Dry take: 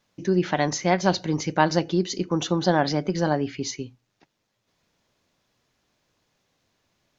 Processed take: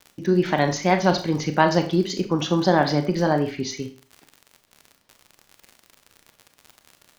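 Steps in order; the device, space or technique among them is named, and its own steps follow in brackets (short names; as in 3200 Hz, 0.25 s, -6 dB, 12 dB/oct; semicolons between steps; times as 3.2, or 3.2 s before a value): lo-fi chain (LPF 5400 Hz 12 dB/oct; wow and flutter; crackle 60/s -34 dBFS); Schroeder reverb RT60 0.38 s, combs from 27 ms, DRR 7 dB; gain +2 dB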